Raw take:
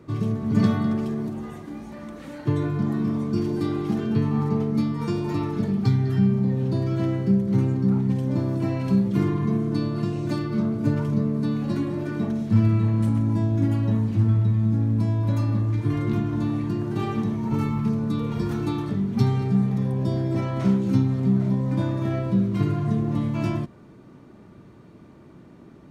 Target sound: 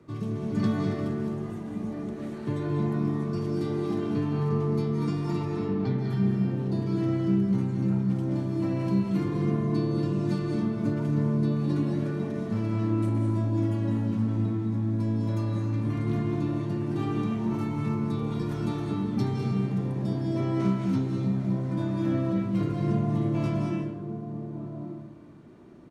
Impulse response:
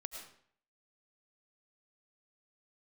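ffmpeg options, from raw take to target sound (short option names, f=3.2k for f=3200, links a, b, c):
-filter_complex "[0:a]asplit=3[a][b][c];[a]afade=t=out:st=5.45:d=0.02[d];[b]lowpass=3.4k,afade=t=in:st=5.45:d=0.02,afade=t=out:st=5.97:d=0.02[e];[c]afade=t=in:st=5.97:d=0.02[f];[d][e][f]amix=inputs=3:normalize=0,acrossover=split=130|980[g][h][i];[g]asoftclip=type=tanh:threshold=-31dB[j];[h]aecho=1:1:1191:0.473[k];[j][k][i]amix=inputs=3:normalize=0[l];[1:a]atrim=start_sample=2205,asetrate=23373,aresample=44100[m];[l][m]afir=irnorm=-1:irlink=0,volume=-5dB"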